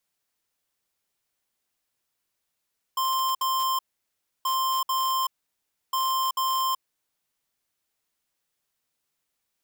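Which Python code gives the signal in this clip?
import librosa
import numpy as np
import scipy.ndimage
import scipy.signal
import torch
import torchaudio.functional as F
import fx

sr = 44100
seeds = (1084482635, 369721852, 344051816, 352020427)

y = fx.beep_pattern(sr, wave='square', hz=1050.0, on_s=0.38, off_s=0.06, beeps=2, pause_s=0.66, groups=3, level_db=-25.0)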